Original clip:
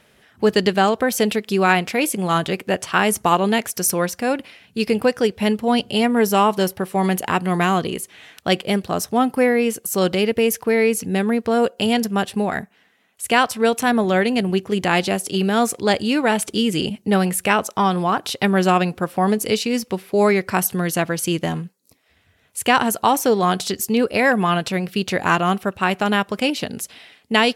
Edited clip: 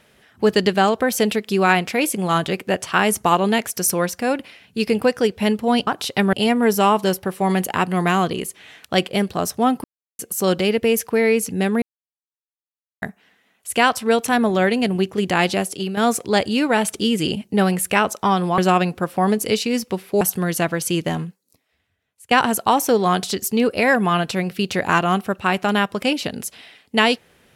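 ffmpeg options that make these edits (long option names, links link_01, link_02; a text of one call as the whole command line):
ffmpeg -i in.wav -filter_complex "[0:a]asplit=11[link_01][link_02][link_03][link_04][link_05][link_06][link_07][link_08][link_09][link_10][link_11];[link_01]atrim=end=5.872[link_12];[link_02]atrim=start=18.118:end=18.582[link_13];[link_03]atrim=start=5.868:end=9.38,asetpts=PTS-STARTPTS,afade=type=out:start_time=3.508:duration=0.004:curve=hsin[link_14];[link_04]atrim=start=9.38:end=9.73,asetpts=PTS-STARTPTS,volume=0[link_15];[link_05]atrim=start=9.73:end=11.36,asetpts=PTS-STARTPTS,afade=type=in:duration=0.004:curve=hsin,afade=type=out:start_time=1.626:duration=0.004:curve=hsin[link_16];[link_06]atrim=start=11.36:end=12.56,asetpts=PTS-STARTPTS,volume=0[link_17];[link_07]atrim=start=12.56:end=15.51,asetpts=PTS-STARTPTS,afade=type=in:duration=0.004:curve=hsin,afade=type=out:start_time=2.59:duration=0.36:silence=0.334965[link_18];[link_08]atrim=start=15.51:end=18.122,asetpts=PTS-STARTPTS,afade=type=in:duration=0.004:curve=hsin:silence=0.334965[link_19];[link_09]atrim=start=18.578:end=20.212[link_20];[link_10]atrim=start=20.578:end=22.68,asetpts=PTS-STARTPTS,afade=type=out:start_time=1.032:duration=1.07:curve=qua:silence=0.1[link_21];[link_11]atrim=start=22.68,asetpts=PTS-STARTPTS,afade=type=in:duration=0.004:curve=hsin:silence=0.1[link_22];[link_12][link_13]acrossfade=duration=0.004:curve1=hsin:curve2=hsin[link_23];[link_14][link_15][link_16][link_17][link_18][link_19]concat=n=6:v=0:a=1[link_24];[link_23][link_24]acrossfade=duration=0.004:curve1=hsin:curve2=hsin[link_25];[link_25][link_20]acrossfade=duration=0.004:curve1=hsin:curve2=hsin[link_26];[link_21][link_22]concat=n=2:v=0:a=1[link_27];[link_26][link_27]acrossfade=duration=0.004:curve1=hsin:curve2=hsin" out.wav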